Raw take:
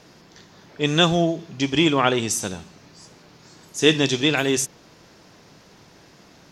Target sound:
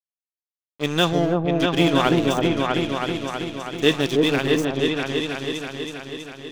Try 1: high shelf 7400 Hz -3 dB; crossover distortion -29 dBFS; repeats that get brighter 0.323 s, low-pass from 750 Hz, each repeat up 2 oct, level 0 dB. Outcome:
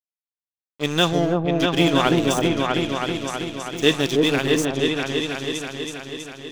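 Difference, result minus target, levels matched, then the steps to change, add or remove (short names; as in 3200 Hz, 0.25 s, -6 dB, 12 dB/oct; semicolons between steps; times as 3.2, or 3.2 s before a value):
8000 Hz band +5.0 dB
change: high shelf 7400 Hz -13 dB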